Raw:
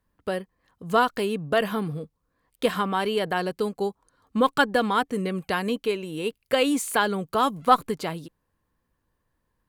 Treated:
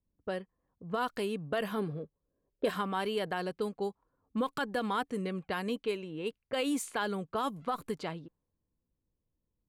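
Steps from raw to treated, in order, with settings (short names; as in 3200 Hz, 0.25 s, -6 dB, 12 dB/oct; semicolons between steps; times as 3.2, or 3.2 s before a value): low-pass opened by the level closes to 450 Hz, open at -21.5 dBFS; limiter -15 dBFS, peak gain reduction 11.5 dB; 1.77–2.69 small resonant body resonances 400/570/1600/4000 Hz, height 9 dB -> 13 dB; gain -7.5 dB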